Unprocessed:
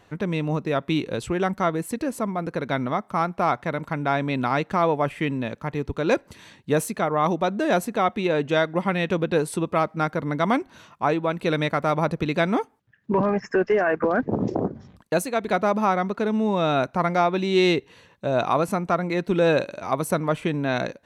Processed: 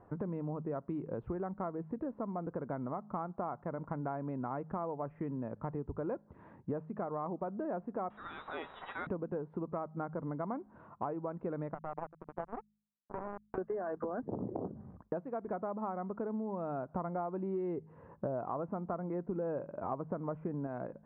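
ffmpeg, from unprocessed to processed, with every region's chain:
-filter_complex "[0:a]asettb=1/sr,asplit=3[a][b][c];[a]atrim=end=8.104[d];[b]atrim=start=8.1:end=9.07,asetpts=PTS-STARTPTS,afade=t=in:d=0.004:c=qsin,afade=t=out:st=0.966:d=0.004:c=qsin,aeval=exprs='val(0)+0.5*0.0501*sgn(val(0))':c=same,lowpass=f=3.4k:t=q:w=0.5098,lowpass=f=3.4k:t=q:w=0.6013,lowpass=f=3.4k:t=q:w=0.9,lowpass=f=3.4k:t=q:w=2.563,afreqshift=-4000,asplit=2[e][f];[f]adelay=25,volume=-12dB[g];[e][g]amix=inputs=2:normalize=0,atrim=end_sample=42777[h];[c]atrim=start=9.066[i];[d][h]acrossfade=d=0.004:c1=hsin:c2=qsin[j];[j][i]acrossfade=d=0.004:c1=qsin:c2=hsin,asettb=1/sr,asplit=3[k][l][m];[k]atrim=end=11.744[n];[l]atrim=start=11.74:end=13.58,asetpts=PTS-STARTPTS,afade=t=in:d=0.004:c=qsin,afade=t=out:st=1.836:d=0.004:c=qsin,acompressor=threshold=-33dB:ratio=3:attack=3.2:release=140:knee=1:detection=peak,equalizer=f=740:w=3:g=10,acrusher=bits=3:mix=0:aa=0.5[o];[m]atrim=start=13.576[p];[n][o]acrossfade=d=0.004:c1=hsin:c2=qsin[q];[q][p]acrossfade=d=0.004:c1=qsin:c2=hsin,asettb=1/sr,asplit=3[r][s][t];[r]atrim=end=16.904[u];[s]atrim=start=16.9:end=20.67,asetpts=PTS-STARTPTS,afade=t=in:d=0.004:c=qsin,afade=t=out:st=3.766:d=0.004:c=qsin,acontrast=49,highshelf=f=3.7k:g=-8.5[v];[t]atrim=start=20.666[w];[u][v]acrossfade=d=0.004:c1=hsin:c2=qsin[x];[x][w]acrossfade=d=0.004:c1=qsin:c2=hsin,lowpass=f=1.2k:w=0.5412,lowpass=f=1.2k:w=1.3066,bandreject=f=52.42:t=h:w=4,bandreject=f=104.84:t=h:w=4,bandreject=f=157.26:t=h:w=4,bandreject=f=209.68:t=h:w=4,acompressor=threshold=-33dB:ratio=8,volume=-2dB"

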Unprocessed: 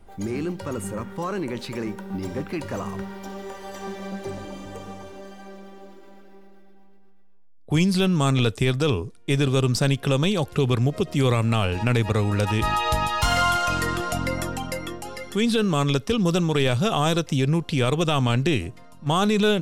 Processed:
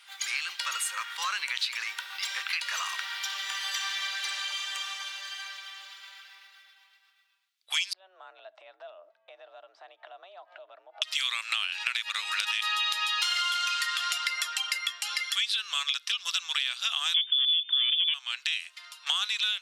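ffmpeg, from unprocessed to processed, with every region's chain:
-filter_complex "[0:a]asettb=1/sr,asplit=3[a][b][c];[a]atrim=end=7.934[d];[b]atrim=start=7.93:end=11.02,asetpts=PTS-STARTPTS,afade=t=in:d=0.004:c=qsin,afade=t=out:st=3.086:d=0.004:c=qsin,afreqshift=190,acompressor=threshold=-36dB:ratio=8:attack=3.2:release=140:knee=1:detection=peak,lowpass=f=650:t=q:w=5.8[e];[c]atrim=start=11.016[f];[d][e]acrossfade=d=0.004:c1=hsin:c2=qsin[g];[g][f]acrossfade=d=0.004:c1=qsin:c2=hsin,asettb=1/sr,asplit=3[h][i][j];[h]atrim=end=17.144[k];[i]atrim=start=17.14:end=18.14,asetpts=PTS-STARTPTS,afade=t=in:d=0.004:c=qsin,afade=t=out:st=0.996:d=0.004:c=qsin,acontrast=68,asoftclip=type=hard:threshold=-11.5dB,lowpass=f=3.1k:t=q:w=0.5098,lowpass=f=3.1k:t=q:w=0.6013,lowpass=f=3.1k:t=q:w=0.9,lowpass=f=3.1k:t=q:w=2.563,afreqshift=-3600[l];[j]atrim=start=18.136[m];[k][l]acrossfade=d=0.004:c1=hsin:c2=qsin[n];[n][m]acrossfade=d=0.004:c1=qsin:c2=hsin,highpass=f=1.3k:w=0.5412,highpass=f=1.3k:w=1.3066,equalizer=f=3.6k:t=o:w=1.6:g=13,acompressor=threshold=-33dB:ratio=6,volume=6dB"

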